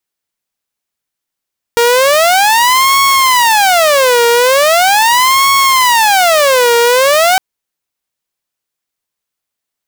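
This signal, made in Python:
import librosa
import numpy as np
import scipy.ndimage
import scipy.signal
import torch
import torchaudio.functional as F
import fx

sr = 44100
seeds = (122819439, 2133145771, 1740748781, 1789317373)

y = fx.siren(sr, length_s=5.61, kind='wail', low_hz=470.0, high_hz=1100.0, per_s=0.4, wave='saw', level_db=-4.0)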